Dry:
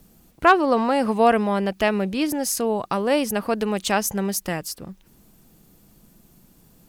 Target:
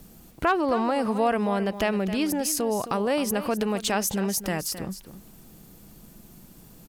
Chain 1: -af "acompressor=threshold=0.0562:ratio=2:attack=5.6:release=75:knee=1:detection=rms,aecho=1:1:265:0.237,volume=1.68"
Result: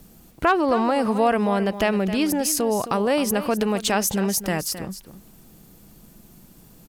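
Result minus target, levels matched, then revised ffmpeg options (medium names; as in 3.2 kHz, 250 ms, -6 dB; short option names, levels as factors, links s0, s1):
compression: peak gain reduction -3.5 dB
-af "acompressor=threshold=0.0237:ratio=2:attack=5.6:release=75:knee=1:detection=rms,aecho=1:1:265:0.237,volume=1.68"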